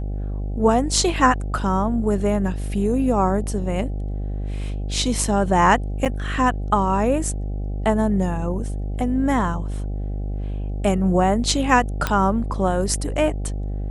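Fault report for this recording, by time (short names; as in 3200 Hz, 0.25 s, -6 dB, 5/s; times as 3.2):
buzz 50 Hz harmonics 16 -26 dBFS
6.05–6.06 gap 7.6 ms
12.07 pop -6 dBFS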